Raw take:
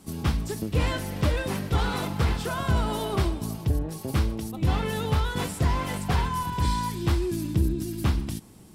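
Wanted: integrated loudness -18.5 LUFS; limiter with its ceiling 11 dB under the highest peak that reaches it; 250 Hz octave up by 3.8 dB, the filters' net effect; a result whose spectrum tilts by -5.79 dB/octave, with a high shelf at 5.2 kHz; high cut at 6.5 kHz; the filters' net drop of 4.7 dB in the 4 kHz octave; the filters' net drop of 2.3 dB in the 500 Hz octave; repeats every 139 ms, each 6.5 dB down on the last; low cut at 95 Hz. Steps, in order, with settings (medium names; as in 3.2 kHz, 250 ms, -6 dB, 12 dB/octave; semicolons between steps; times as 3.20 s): high-pass 95 Hz; low-pass 6.5 kHz; peaking EQ 250 Hz +7.5 dB; peaking EQ 500 Hz -6.5 dB; peaking EQ 4 kHz -3.5 dB; treble shelf 5.2 kHz -5 dB; peak limiter -21.5 dBFS; feedback delay 139 ms, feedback 47%, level -6.5 dB; trim +11.5 dB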